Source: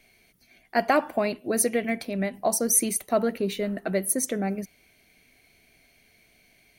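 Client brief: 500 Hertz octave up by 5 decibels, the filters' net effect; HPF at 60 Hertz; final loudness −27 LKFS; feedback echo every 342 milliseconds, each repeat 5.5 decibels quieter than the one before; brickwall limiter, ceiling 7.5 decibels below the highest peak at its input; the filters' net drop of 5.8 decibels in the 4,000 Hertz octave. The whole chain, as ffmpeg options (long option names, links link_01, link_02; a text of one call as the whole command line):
ffmpeg -i in.wav -af "highpass=60,equalizer=frequency=500:width_type=o:gain=6.5,equalizer=frequency=4000:width_type=o:gain=-8,alimiter=limit=-14.5dB:level=0:latency=1,aecho=1:1:342|684|1026|1368|1710|2052|2394:0.531|0.281|0.149|0.079|0.0419|0.0222|0.0118,volume=-2.5dB" out.wav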